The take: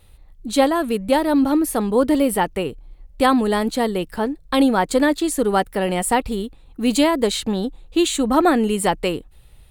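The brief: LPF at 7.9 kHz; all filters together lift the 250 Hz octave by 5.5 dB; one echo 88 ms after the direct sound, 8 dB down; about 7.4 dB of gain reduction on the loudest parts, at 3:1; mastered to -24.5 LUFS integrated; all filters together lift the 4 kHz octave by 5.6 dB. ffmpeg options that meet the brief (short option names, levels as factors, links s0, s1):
-af "lowpass=7900,equalizer=f=250:t=o:g=6.5,equalizer=f=4000:t=o:g=7,acompressor=threshold=0.141:ratio=3,aecho=1:1:88:0.398,volume=0.631"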